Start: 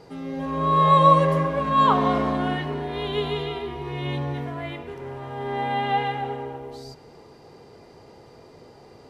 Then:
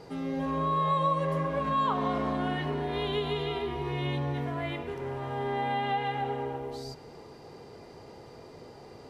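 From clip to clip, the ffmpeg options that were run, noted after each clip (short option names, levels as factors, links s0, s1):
-af "acompressor=threshold=0.0398:ratio=3"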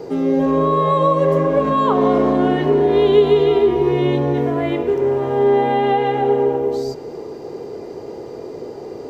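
-filter_complex "[0:a]equalizer=f=390:t=o:w=1.5:g=14.5,acrossover=split=480[s0][s1];[s1]aexciter=amount=1:drive=6.9:freq=5800[s2];[s0][s2]amix=inputs=2:normalize=0,volume=2"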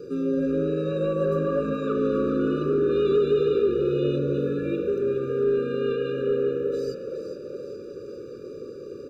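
-filter_complex "[0:a]asoftclip=type=tanh:threshold=0.473,asplit=8[s0][s1][s2][s3][s4][s5][s6][s7];[s1]adelay=415,afreqshift=51,volume=0.335[s8];[s2]adelay=830,afreqshift=102,volume=0.191[s9];[s3]adelay=1245,afreqshift=153,volume=0.108[s10];[s4]adelay=1660,afreqshift=204,volume=0.0624[s11];[s5]adelay=2075,afreqshift=255,volume=0.0355[s12];[s6]adelay=2490,afreqshift=306,volume=0.0202[s13];[s7]adelay=2905,afreqshift=357,volume=0.0115[s14];[s0][s8][s9][s10][s11][s12][s13][s14]amix=inputs=8:normalize=0,afftfilt=real='re*eq(mod(floor(b*sr/1024/580),2),0)':imag='im*eq(mod(floor(b*sr/1024/580),2),0)':win_size=1024:overlap=0.75,volume=0.447"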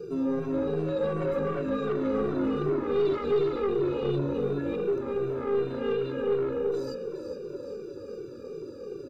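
-filter_complex "[0:a]aeval=exprs='(tanh(11.2*val(0)+0.2)-tanh(0.2))/11.2':c=same,asplit=2[s0][s1];[s1]adelay=2.1,afreqshift=-2.7[s2];[s0][s2]amix=inputs=2:normalize=1,volume=1.26"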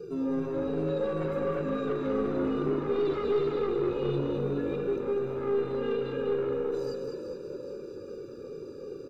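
-af "aecho=1:1:203:0.531,volume=0.75"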